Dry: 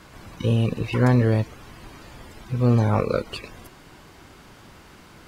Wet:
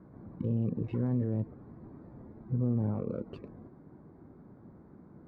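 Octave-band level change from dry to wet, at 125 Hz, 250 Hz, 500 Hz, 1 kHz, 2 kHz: -11.0 dB, -8.5 dB, -14.0 dB, -21.0 dB, under -25 dB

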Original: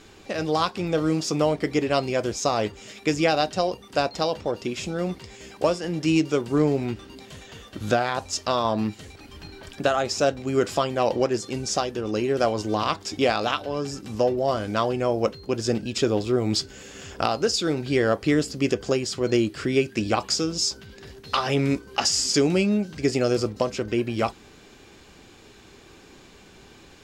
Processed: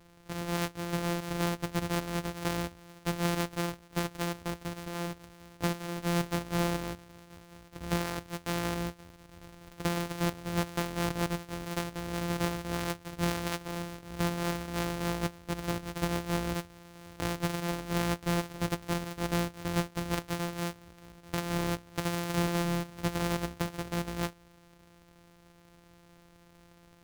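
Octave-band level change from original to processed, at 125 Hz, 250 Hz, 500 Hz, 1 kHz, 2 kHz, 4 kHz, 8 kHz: -3.5 dB, -8.0 dB, -13.0 dB, -9.0 dB, -6.0 dB, -10.5 dB, -10.0 dB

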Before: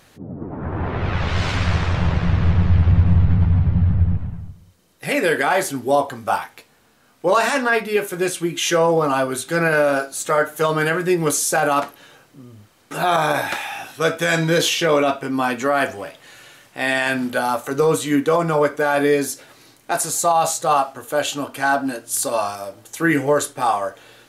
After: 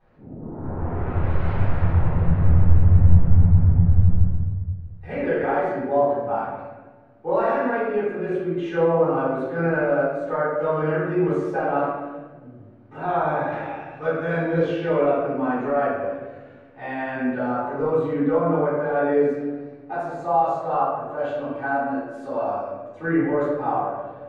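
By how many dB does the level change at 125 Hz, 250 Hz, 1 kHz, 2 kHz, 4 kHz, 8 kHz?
-0.5 dB, -2.0 dB, -4.5 dB, -9.0 dB, under -20 dB, under -35 dB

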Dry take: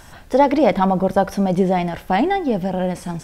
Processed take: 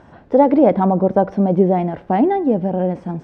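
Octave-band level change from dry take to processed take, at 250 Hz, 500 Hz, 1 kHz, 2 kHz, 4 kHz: +3.5 dB, +3.0 dB, -0.5 dB, -7.5 dB, under -10 dB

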